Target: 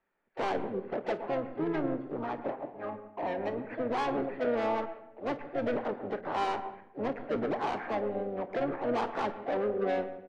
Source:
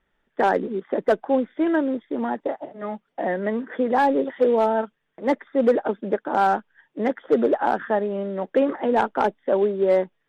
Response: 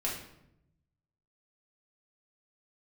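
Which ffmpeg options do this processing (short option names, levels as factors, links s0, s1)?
-filter_complex "[0:a]acrossover=split=240 2100:gain=0.158 1 0.141[s0][s1][s2];[s0][s1][s2]amix=inputs=3:normalize=0,asoftclip=type=tanh:threshold=0.0794,aecho=1:1:29|53:0.211|0.133,asplit=2[s3][s4];[1:a]atrim=start_sample=2205,lowpass=2200,adelay=109[s5];[s4][s5]afir=irnorm=-1:irlink=0,volume=0.178[s6];[s3][s6]amix=inputs=2:normalize=0,asplit=4[s7][s8][s9][s10];[s8]asetrate=22050,aresample=44100,atempo=2,volume=0.316[s11];[s9]asetrate=55563,aresample=44100,atempo=0.793701,volume=0.355[s12];[s10]asetrate=58866,aresample=44100,atempo=0.749154,volume=0.355[s13];[s7][s11][s12][s13]amix=inputs=4:normalize=0,volume=0.473"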